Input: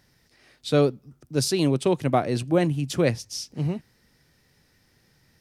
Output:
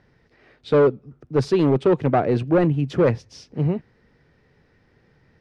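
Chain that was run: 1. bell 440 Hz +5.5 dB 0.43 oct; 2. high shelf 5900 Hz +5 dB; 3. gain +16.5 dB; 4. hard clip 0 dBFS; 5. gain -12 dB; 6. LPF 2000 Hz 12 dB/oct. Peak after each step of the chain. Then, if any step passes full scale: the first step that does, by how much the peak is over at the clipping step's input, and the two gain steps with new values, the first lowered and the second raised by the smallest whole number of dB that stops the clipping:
-6.5, -6.5, +10.0, 0.0, -12.0, -11.5 dBFS; step 3, 10.0 dB; step 3 +6.5 dB, step 5 -2 dB

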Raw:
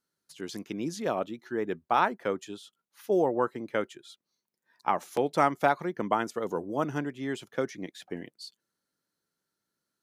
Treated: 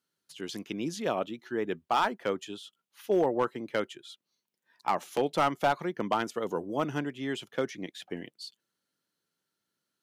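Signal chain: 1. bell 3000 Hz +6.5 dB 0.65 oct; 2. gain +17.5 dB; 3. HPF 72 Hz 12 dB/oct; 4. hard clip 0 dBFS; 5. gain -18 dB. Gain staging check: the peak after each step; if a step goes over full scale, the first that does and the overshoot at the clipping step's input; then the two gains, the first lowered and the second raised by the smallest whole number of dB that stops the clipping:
-8.5, +9.0, +9.0, 0.0, -18.0 dBFS; step 2, 9.0 dB; step 2 +8.5 dB, step 5 -9 dB

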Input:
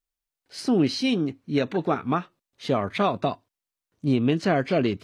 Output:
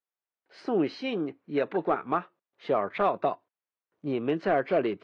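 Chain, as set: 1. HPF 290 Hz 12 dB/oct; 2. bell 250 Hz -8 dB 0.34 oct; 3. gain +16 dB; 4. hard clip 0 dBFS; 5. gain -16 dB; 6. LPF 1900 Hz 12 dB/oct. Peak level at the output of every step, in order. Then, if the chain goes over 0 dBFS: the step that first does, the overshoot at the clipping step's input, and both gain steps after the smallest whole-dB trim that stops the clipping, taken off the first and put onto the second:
-10.0, -10.0, +6.0, 0.0, -16.0, -15.5 dBFS; step 3, 6.0 dB; step 3 +10 dB, step 5 -10 dB

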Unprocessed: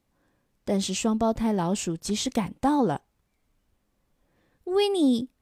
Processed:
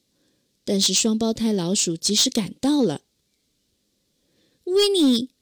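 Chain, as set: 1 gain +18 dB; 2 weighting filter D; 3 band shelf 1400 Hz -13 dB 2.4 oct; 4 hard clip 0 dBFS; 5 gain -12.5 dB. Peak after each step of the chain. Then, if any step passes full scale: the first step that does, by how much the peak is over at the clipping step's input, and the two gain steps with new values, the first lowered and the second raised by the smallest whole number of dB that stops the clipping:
+6.5, +11.0, +8.0, 0.0, -12.5 dBFS; step 1, 8.0 dB; step 1 +10 dB, step 5 -4.5 dB

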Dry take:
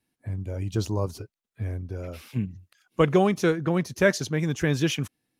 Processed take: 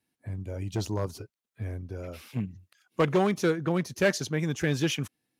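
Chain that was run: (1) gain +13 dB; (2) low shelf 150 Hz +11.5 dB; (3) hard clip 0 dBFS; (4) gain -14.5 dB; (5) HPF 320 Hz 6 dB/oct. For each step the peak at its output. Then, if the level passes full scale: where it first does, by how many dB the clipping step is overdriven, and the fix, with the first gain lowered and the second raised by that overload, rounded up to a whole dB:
+5.5, +6.0, 0.0, -14.5, -10.5 dBFS; step 1, 6.0 dB; step 1 +7 dB, step 4 -8.5 dB

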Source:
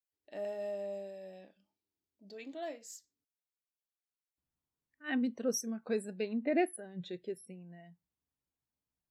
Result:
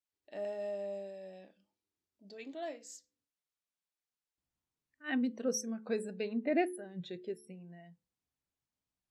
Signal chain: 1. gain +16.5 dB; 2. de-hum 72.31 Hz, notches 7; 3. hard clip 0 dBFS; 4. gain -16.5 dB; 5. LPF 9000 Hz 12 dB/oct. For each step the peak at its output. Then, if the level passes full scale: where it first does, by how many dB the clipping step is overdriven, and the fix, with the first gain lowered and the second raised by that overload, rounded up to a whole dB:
-2.5, -2.5, -2.5, -19.0, -19.0 dBFS; no overload

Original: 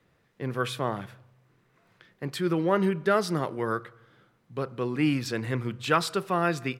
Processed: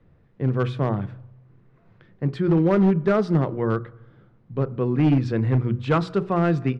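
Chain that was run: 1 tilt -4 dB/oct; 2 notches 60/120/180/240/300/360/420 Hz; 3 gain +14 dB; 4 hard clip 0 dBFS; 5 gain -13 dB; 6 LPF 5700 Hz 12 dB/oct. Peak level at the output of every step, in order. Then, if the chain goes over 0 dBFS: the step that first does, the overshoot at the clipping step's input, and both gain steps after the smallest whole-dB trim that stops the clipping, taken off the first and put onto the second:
-7.0, -7.5, +6.5, 0.0, -13.0, -12.5 dBFS; step 3, 6.5 dB; step 3 +7 dB, step 5 -6 dB

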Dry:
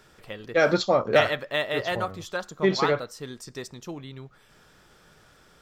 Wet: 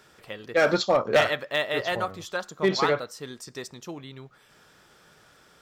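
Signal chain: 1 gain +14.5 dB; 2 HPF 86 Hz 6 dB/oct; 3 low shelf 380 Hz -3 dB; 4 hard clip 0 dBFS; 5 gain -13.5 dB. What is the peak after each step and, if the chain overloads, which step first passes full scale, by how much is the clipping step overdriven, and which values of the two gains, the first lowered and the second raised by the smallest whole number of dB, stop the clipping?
+5.0, +5.5, +6.0, 0.0, -13.5 dBFS; step 1, 6.0 dB; step 1 +8.5 dB, step 5 -7.5 dB

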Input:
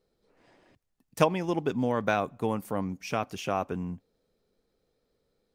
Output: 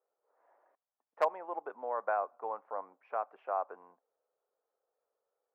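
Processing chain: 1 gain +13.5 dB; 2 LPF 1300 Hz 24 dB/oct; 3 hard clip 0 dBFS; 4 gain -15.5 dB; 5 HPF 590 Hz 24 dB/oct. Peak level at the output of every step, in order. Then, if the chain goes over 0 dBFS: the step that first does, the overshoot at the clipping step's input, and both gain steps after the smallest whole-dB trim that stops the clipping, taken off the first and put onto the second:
+8.0, +5.5, 0.0, -15.5, -16.0 dBFS; step 1, 5.5 dB; step 1 +7.5 dB, step 4 -9.5 dB

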